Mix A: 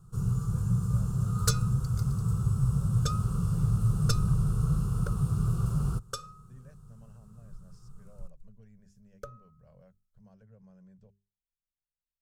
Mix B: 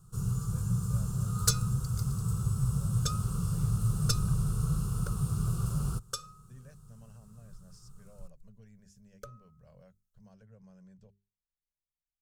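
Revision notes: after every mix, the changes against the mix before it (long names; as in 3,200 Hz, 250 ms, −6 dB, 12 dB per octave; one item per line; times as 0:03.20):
first sound −3.0 dB
second sound −5.0 dB
master: add high-shelf EQ 2,600 Hz +9 dB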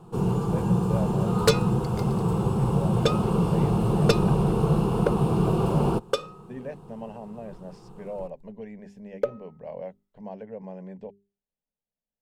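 master: remove drawn EQ curve 110 Hz 0 dB, 290 Hz −26 dB, 560 Hz −24 dB, 900 Hz −28 dB, 1,300 Hz −5 dB, 2,000 Hz −21 dB, 2,900 Hz −16 dB, 6,300 Hz +5 dB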